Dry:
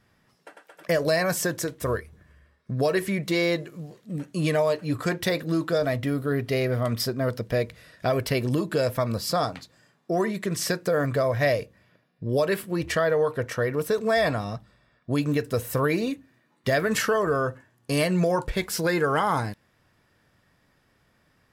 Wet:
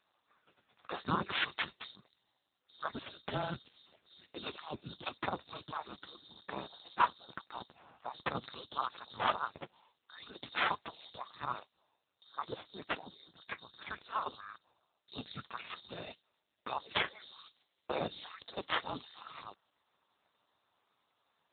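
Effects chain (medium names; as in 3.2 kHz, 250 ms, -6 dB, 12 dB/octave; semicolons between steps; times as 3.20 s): split-band scrambler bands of 4 kHz; trim +6 dB; AMR-NB 5.9 kbps 8 kHz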